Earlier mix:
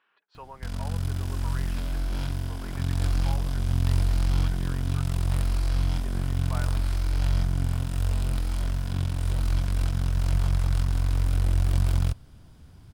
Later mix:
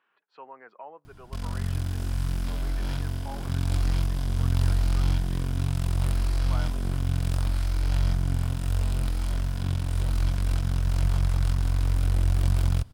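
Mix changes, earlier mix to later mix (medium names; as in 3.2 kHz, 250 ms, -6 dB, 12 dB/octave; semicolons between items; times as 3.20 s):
speech: add treble shelf 2.8 kHz -8 dB; background: entry +0.70 s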